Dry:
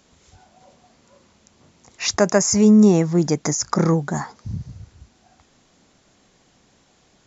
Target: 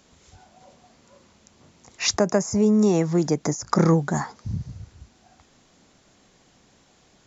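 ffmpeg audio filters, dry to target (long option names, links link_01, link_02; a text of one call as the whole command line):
ffmpeg -i in.wav -filter_complex "[0:a]asettb=1/sr,asplit=3[link_01][link_02][link_03];[link_01]atrim=end=2.164[link_04];[link_02]atrim=start=2.16:end=3.67,asetpts=PTS-STARTPTS,afade=type=in:duration=0.004:curve=qsin,afade=type=out:start_time=1.506:duration=0.004:curve=qsin,acrossover=split=300|1000[link_05][link_06][link_07];[link_05]acompressor=threshold=-23dB:ratio=4[link_08];[link_06]acompressor=threshold=-19dB:ratio=4[link_09];[link_07]acompressor=threshold=-33dB:ratio=4[link_10];[link_08][link_09][link_10]amix=inputs=3:normalize=0[link_11];[link_03]atrim=start=3.666[link_12];[link_04][link_11]acrossfade=duration=0.004:curve1=hsin:curve2=qsin[link_13];[link_13][link_12]acrossfade=duration=0.004:curve1=qsin:curve2=hsin" out.wav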